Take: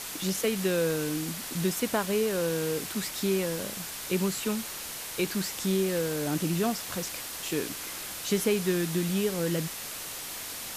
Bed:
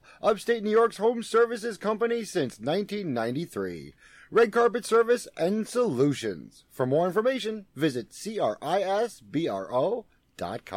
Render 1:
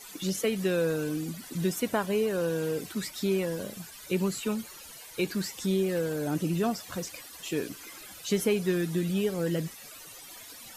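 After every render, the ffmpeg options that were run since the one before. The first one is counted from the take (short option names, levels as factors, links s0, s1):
-af "afftdn=nr=15:nf=-39"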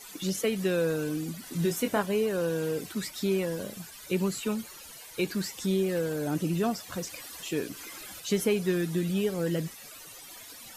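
-filter_complex "[0:a]asettb=1/sr,asplit=3[s0][s1][s2];[s0]atrim=end=1.444[s3];[s1]atrim=start=1.44:end=2.02,asetpts=PTS-STARTPTS,afade=t=in:d=0.004:c=qsin,afade=t=out:st=0.576:d=0.004:c=qsin,asplit=2[s4][s5];[s5]adelay=24,volume=0.473[s6];[s4][s6]amix=inputs=2:normalize=0,atrim=end_sample=25578[s7];[s2]atrim=start=2.016[s8];[s3][s7]acrossfade=d=0.004:c1=hsin:c2=qsin[s9];[s9][s8]acrossfade=d=0.004:c1=qsin:c2=hsin,asettb=1/sr,asplit=3[s10][s11][s12];[s10]atrim=end=7.044[s13];[s11]atrim=start=7.04:end=8.2,asetpts=PTS-STARTPTS,afade=t=in:d=0.004:c=qsin,afade=t=out:st=1.156:d=0.004:c=qsin,acompressor=mode=upward:threshold=0.0158:ratio=2.5:attack=3.2:release=140:knee=2.83:detection=peak[s14];[s12]atrim=start=8.196[s15];[s13][s14]acrossfade=d=0.004:c1=hsin:c2=qsin[s16];[s16][s15]acrossfade=d=0.004:c1=qsin:c2=hsin"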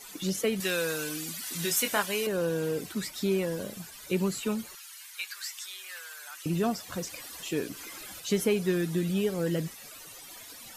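-filter_complex "[0:a]asettb=1/sr,asplit=3[s0][s1][s2];[s0]atrim=end=0.604[s3];[s1]atrim=start=0.6:end=2.27,asetpts=PTS-STARTPTS,afade=t=in:d=0.004:c=qsin,afade=t=out:st=1.666:d=0.004:c=qsin,tiltshelf=f=870:g=-9[s4];[s2]atrim=start=2.266[s5];[s3][s4]acrossfade=d=0.004:c1=hsin:c2=qsin[s6];[s6][s5]acrossfade=d=0.004:c1=qsin:c2=hsin,asettb=1/sr,asplit=3[s7][s8][s9];[s7]atrim=end=4.754[s10];[s8]atrim=start=4.75:end=6.46,asetpts=PTS-STARTPTS,afade=t=in:d=0.004:c=qsin,afade=t=out:st=1.706:d=0.004:c=qsin,highpass=f=1200:w=0.5412,highpass=f=1200:w=1.3066[s11];[s9]atrim=start=6.456[s12];[s10][s11]acrossfade=d=0.004:c1=hsin:c2=qsin[s13];[s13][s12]acrossfade=d=0.004:c1=qsin:c2=hsin"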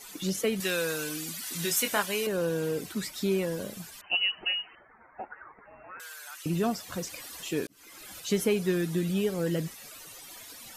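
-filter_complex "[0:a]asettb=1/sr,asplit=3[s0][s1][s2];[s0]atrim=end=4.014[s3];[s1]atrim=start=4.01:end=6,asetpts=PTS-STARTPTS,afade=t=in:d=0.004:c=qsin,afade=t=out:st=1.986:d=0.004:c=qsin,lowpass=f=2600:t=q:w=0.5098,lowpass=f=2600:t=q:w=0.6013,lowpass=f=2600:t=q:w=0.9,lowpass=f=2600:t=q:w=2.563,afreqshift=-3100[s4];[s2]atrim=start=5.996[s5];[s3][s4]acrossfade=d=0.004:c1=hsin:c2=qsin[s6];[s6][s5]acrossfade=d=0.004:c1=qsin:c2=hsin,asplit=2[s7][s8];[s7]atrim=end=7.67,asetpts=PTS-STARTPTS,afade=t=out:st=7.666:d=0.004:c=hsin[s9];[s8]atrim=start=7.67,asetpts=PTS-STARTPTS,afade=t=in:d=0.54[s10];[s9][s10]concat=n=2:v=0:a=1"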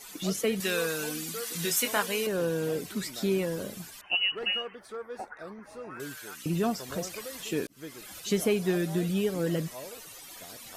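-filter_complex "[1:a]volume=0.126[s0];[0:a][s0]amix=inputs=2:normalize=0"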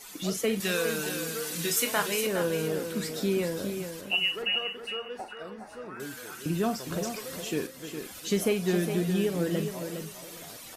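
-filter_complex "[0:a]asplit=2[s0][s1];[s1]adelay=45,volume=0.251[s2];[s0][s2]amix=inputs=2:normalize=0,aecho=1:1:411|822|1233:0.398|0.0796|0.0159"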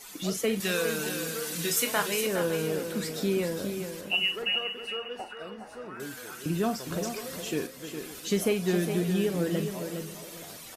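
-af "aecho=1:1:549:0.126"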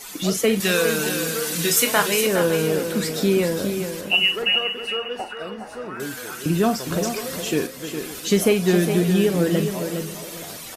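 -af "volume=2.66"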